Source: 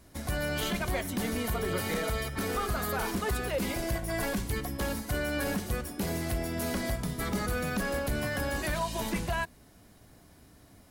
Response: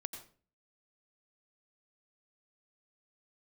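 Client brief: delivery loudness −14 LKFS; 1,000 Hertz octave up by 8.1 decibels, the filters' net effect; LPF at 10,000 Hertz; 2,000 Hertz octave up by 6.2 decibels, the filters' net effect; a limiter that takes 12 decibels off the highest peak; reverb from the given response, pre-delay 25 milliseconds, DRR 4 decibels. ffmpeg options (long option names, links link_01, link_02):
-filter_complex "[0:a]lowpass=10000,equalizer=frequency=1000:width_type=o:gain=9,equalizer=frequency=2000:width_type=o:gain=4.5,alimiter=level_in=2.5dB:limit=-24dB:level=0:latency=1,volume=-2.5dB,asplit=2[link_01][link_02];[1:a]atrim=start_sample=2205,adelay=25[link_03];[link_02][link_03]afir=irnorm=-1:irlink=0,volume=-2dB[link_04];[link_01][link_04]amix=inputs=2:normalize=0,volume=19dB"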